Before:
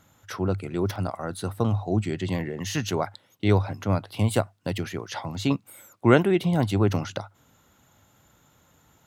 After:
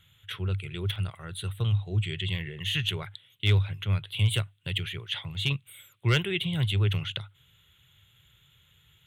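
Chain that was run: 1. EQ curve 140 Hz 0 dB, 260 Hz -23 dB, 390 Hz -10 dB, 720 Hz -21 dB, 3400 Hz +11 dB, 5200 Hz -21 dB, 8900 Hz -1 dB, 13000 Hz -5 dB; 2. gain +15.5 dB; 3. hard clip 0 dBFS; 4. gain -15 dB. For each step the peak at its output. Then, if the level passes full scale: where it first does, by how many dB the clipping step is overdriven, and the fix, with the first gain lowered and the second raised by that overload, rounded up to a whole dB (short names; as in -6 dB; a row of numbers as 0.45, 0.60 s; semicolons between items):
-9.0, +6.5, 0.0, -15.0 dBFS; step 2, 6.5 dB; step 2 +8.5 dB, step 4 -8 dB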